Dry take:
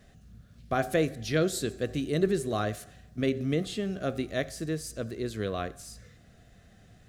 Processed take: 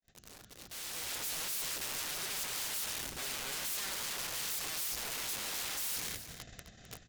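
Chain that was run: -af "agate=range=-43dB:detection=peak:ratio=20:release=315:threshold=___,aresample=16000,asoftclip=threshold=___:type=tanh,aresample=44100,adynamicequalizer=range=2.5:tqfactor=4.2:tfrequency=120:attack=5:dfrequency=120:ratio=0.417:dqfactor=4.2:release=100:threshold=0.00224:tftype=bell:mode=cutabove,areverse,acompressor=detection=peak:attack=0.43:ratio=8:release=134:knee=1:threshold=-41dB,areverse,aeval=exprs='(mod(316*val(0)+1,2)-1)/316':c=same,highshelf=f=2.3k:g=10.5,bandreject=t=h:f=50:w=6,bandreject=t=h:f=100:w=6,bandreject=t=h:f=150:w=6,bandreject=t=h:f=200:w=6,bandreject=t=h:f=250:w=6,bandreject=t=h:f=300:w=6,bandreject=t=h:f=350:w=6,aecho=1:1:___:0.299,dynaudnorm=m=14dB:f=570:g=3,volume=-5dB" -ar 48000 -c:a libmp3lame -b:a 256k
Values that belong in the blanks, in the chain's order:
-54dB, -24dB, 260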